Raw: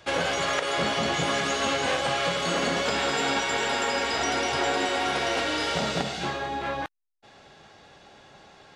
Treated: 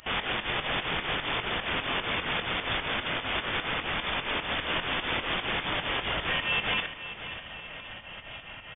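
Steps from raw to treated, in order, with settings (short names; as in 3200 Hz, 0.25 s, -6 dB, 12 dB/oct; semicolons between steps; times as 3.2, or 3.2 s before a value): HPF 150 Hz 12 dB/oct; high shelf 2300 Hz +10 dB; in parallel at +2 dB: compressor 12:1, threshold -34 dBFS, peak gain reduction 16 dB; on the sum: wrapped overs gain 19.5 dB; pump 150 bpm, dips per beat 2, -18 dB, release 0.136 s; doubler 21 ms -11.5 dB; on a send: feedback echo 0.535 s, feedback 52%, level -12 dB; on the sum: inverted band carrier 3500 Hz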